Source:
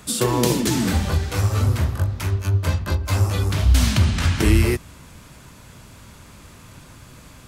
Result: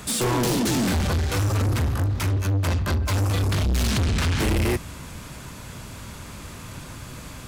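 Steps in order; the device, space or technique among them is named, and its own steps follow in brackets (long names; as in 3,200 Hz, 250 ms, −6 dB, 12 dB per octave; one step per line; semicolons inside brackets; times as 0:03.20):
saturation between pre-emphasis and de-emphasis (high-shelf EQ 10,000 Hz +9.5 dB; soft clipping −25.5 dBFS, distortion −5 dB; high-shelf EQ 10,000 Hz −9.5 dB)
level +6 dB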